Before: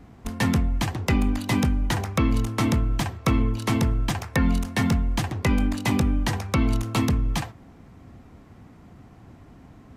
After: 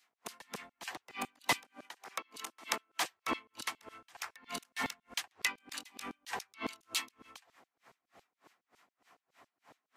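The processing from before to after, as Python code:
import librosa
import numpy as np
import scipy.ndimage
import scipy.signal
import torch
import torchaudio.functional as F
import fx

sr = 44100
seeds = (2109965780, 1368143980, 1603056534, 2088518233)

y = fx.filter_lfo_highpass(x, sr, shape='saw_down', hz=7.2, low_hz=440.0, high_hz=4700.0, q=0.94)
y = fx.highpass(y, sr, hz=230.0, slope=12, at=(1.6, 3.11))
y = y * 10.0 ** (-31 * (0.5 - 0.5 * np.cos(2.0 * np.pi * 3.3 * np.arange(len(y)) / sr)) / 20.0)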